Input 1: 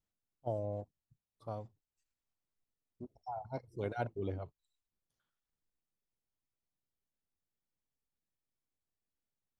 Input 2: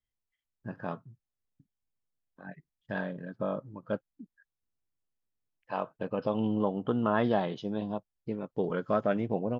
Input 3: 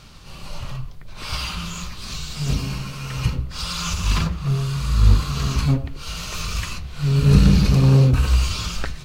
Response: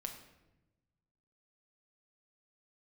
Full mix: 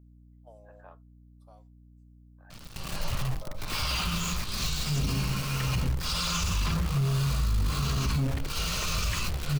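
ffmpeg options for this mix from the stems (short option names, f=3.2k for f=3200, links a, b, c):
-filter_complex "[0:a]flanger=delay=5.3:depth=7.6:regen=59:speed=0.26:shape=sinusoidal,aemphasis=mode=production:type=75kf,volume=-9.5dB[a];[1:a]lowpass=2.7k,volume=-12dB[b];[2:a]acompressor=threshold=-17dB:ratio=4,acrusher=bits=7:dc=4:mix=0:aa=0.000001,adelay=2500,volume=0.5dB[c];[a][b]amix=inputs=2:normalize=0,highpass=f=510:w=0.5412,highpass=f=510:w=1.3066,alimiter=level_in=12.5dB:limit=-24dB:level=0:latency=1:release=486,volume=-12.5dB,volume=0dB[d];[c][d]amix=inputs=2:normalize=0,aeval=exprs='val(0)+0.00224*(sin(2*PI*60*n/s)+sin(2*PI*2*60*n/s)/2+sin(2*PI*3*60*n/s)/3+sin(2*PI*4*60*n/s)/4+sin(2*PI*5*60*n/s)/5)':c=same,alimiter=limit=-20dB:level=0:latency=1:release=20"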